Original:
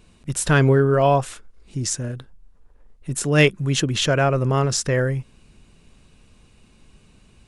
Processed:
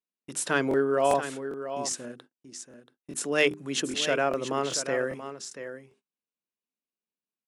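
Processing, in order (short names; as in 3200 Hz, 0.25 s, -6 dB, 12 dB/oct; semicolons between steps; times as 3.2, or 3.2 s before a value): HPF 220 Hz 24 dB/oct; notches 50/100/150/200/250/300/350/400 Hz; gate -46 dBFS, range -36 dB; echo 0.682 s -10.5 dB; crackling interface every 0.40 s, samples 1024, repeat, from 0.69; gain -6 dB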